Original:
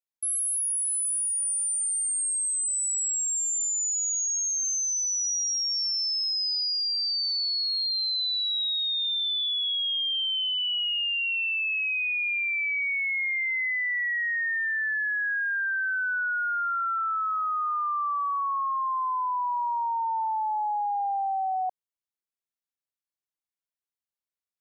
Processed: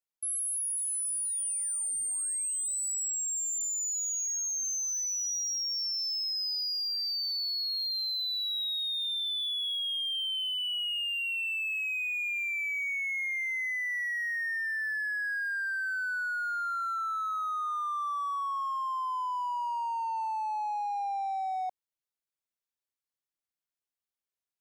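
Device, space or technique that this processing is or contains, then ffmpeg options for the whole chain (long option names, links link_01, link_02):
parallel distortion: -filter_complex "[0:a]asplit=2[link_01][link_02];[link_02]asoftclip=type=hard:threshold=-39.5dB,volume=-4dB[link_03];[link_01][link_03]amix=inputs=2:normalize=0,volume=-6dB"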